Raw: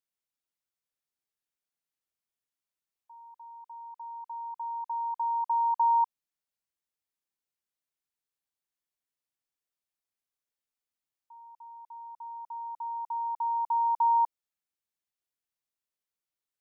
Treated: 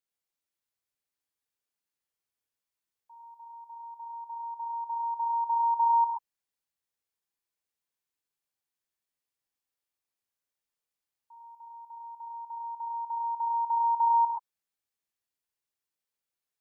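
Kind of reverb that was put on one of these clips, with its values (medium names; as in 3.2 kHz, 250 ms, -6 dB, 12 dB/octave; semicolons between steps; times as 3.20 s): gated-style reverb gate 150 ms rising, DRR -0.5 dB; trim -2 dB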